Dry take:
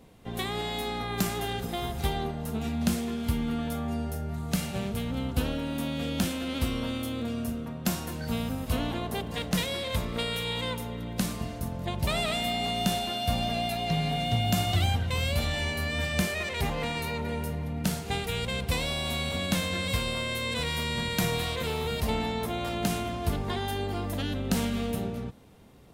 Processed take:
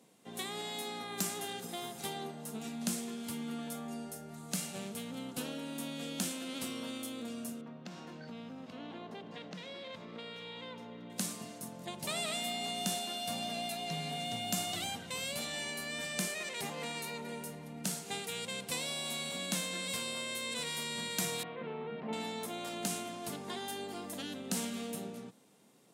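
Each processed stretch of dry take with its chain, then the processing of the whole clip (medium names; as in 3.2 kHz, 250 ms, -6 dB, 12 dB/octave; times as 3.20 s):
7.61–11.10 s: compression 5:1, threshold -30 dBFS + distance through air 230 m
21.43–22.13 s: Bessel low-pass 1.6 kHz, order 6 + resonant low shelf 110 Hz -14 dB, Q 1.5
whole clip: high-pass 170 Hz 24 dB/octave; peaking EQ 8.1 kHz +11 dB 1.4 oct; trim -9 dB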